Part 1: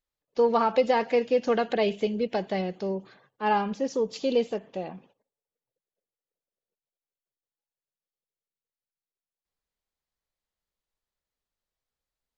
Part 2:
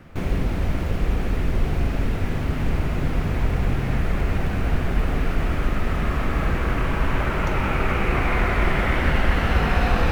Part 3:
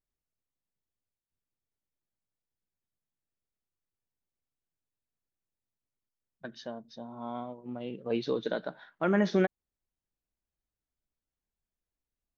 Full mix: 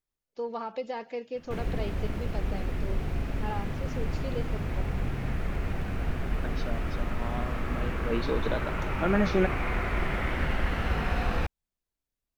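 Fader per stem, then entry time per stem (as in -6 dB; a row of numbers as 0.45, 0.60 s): -12.0, -8.5, +0.5 dB; 0.00, 1.35, 0.00 s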